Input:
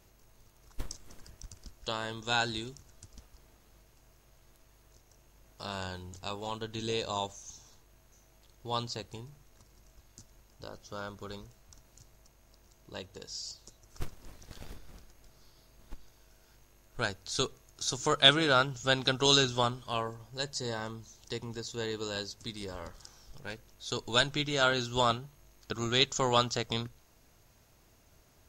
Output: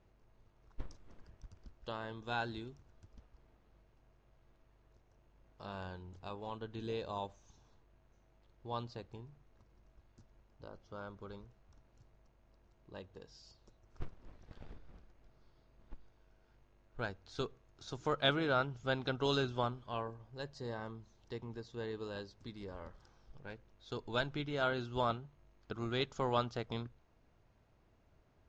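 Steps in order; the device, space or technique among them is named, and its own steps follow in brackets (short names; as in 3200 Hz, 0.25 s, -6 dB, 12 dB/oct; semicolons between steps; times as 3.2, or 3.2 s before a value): phone in a pocket (LPF 3800 Hz 12 dB/oct; high shelf 2100 Hz -9 dB); gain -5 dB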